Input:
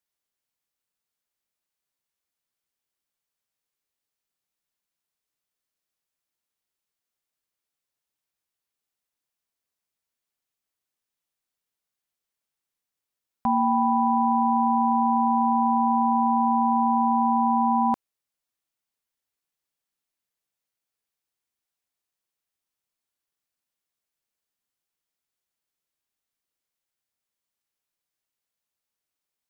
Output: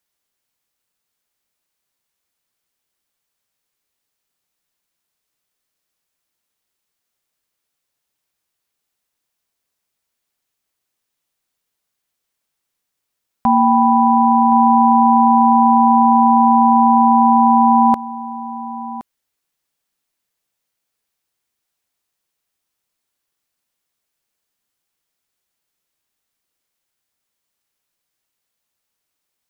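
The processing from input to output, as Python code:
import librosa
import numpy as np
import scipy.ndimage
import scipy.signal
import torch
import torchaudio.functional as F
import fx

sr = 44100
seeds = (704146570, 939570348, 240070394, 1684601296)

y = x + 10.0 ** (-15.0 / 20.0) * np.pad(x, (int(1069 * sr / 1000.0), 0))[:len(x)]
y = y * librosa.db_to_amplitude(9.0)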